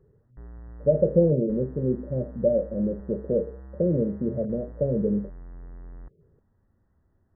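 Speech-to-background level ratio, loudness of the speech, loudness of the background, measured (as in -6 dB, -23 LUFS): 20.0 dB, -25.5 LUFS, -45.5 LUFS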